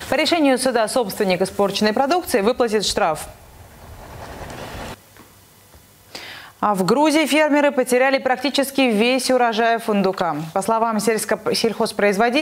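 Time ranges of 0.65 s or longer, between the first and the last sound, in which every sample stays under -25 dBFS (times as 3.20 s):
3.25–4.24 s
4.93–6.15 s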